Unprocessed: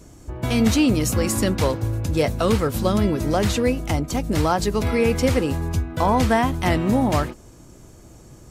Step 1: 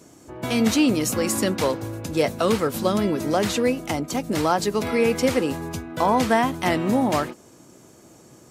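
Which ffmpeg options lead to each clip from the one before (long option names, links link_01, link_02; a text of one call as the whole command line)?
ffmpeg -i in.wav -af "highpass=190" out.wav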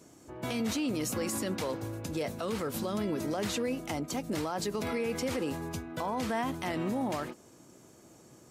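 ffmpeg -i in.wav -af "alimiter=limit=-17.5dB:level=0:latency=1:release=43,volume=-6.5dB" out.wav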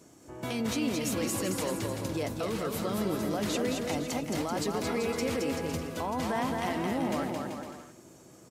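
ffmpeg -i in.wav -af "aecho=1:1:220|385|508.8|601.6|671.2:0.631|0.398|0.251|0.158|0.1" out.wav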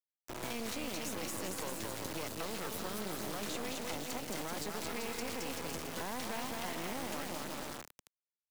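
ffmpeg -i in.wav -filter_complex "[0:a]acrusher=bits=4:dc=4:mix=0:aa=0.000001,acrossover=split=210|910|1900[link_01][link_02][link_03][link_04];[link_01]acompressor=threshold=-49dB:ratio=4[link_05];[link_02]acompressor=threshold=-45dB:ratio=4[link_06];[link_03]acompressor=threshold=-51dB:ratio=4[link_07];[link_04]acompressor=threshold=-43dB:ratio=4[link_08];[link_05][link_06][link_07][link_08]amix=inputs=4:normalize=0,volume=2.5dB" out.wav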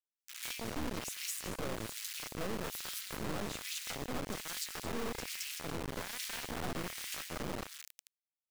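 ffmpeg -i in.wav -filter_complex "[0:a]acrossover=split=850[link_01][link_02];[link_01]aeval=exprs='val(0)*(1-1/2+1/2*cos(2*PI*1.2*n/s))':channel_layout=same[link_03];[link_02]aeval=exprs='val(0)*(1-1/2-1/2*cos(2*PI*1.2*n/s))':channel_layout=same[link_04];[link_03][link_04]amix=inputs=2:normalize=0,acrossover=split=1800[link_05][link_06];[link_05]acrusher=bits=4:dc=4:mix=0:aa=0.000001[link_07];[link_07][link_06]amix=inputs=2:normalize=0,volume=4.5dB" out.wav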